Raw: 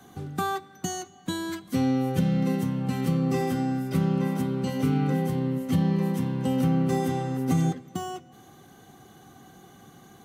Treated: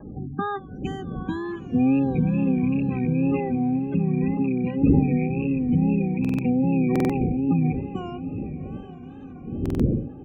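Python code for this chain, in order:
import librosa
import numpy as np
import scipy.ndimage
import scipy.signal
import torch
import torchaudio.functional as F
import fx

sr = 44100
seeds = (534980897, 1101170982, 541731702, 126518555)

y = fx.rattle_buzz(x, sr, strikes_db=-27.0, level_db=-22.0)
y = fx.dmg_wind(y, sr, seeds[0], corner_hz=220.0, level_db=-31.0)
y = fx.spec_gate(y, sr, threshold_db=-20, keep='strong')
y = scipy.signal.savgol_filter(y, 25, 4, mode='constant')
y = fx.peak_eq(y, sr, hz=260.0, db=4.5, octaves=0.42)
y = fx.notch_comb(y, sr, f0_hz=680.0)
y = fx.echo_diffused(y, sr, ms=818, feedback_pct=42, wet_db=-12.5)
y = fx.wow_flutter(y, sr, seeds[1], rate_hz=2.1, depth_cents=88.0)
y = fx.buffer_glitch(y, sr, at_s=(6.2, 6.91, 9.61), block=2048, repeats=3)
y = y * 10.0 ** (1.0 / 20.0)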